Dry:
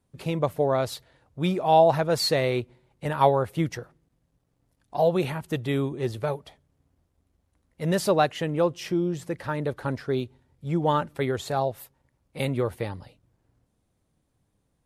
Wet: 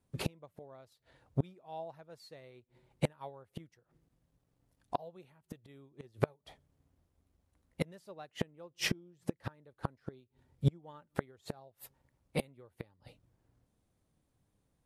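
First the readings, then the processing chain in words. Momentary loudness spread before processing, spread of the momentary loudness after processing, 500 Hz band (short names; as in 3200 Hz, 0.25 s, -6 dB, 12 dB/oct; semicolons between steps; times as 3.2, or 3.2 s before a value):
13 LU, 19 LU, -18.5 dB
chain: flipped gate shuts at -25 dBFS, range -29 dB; upward expander 1.5:1, over -59 dBFS; gain +9.5 dB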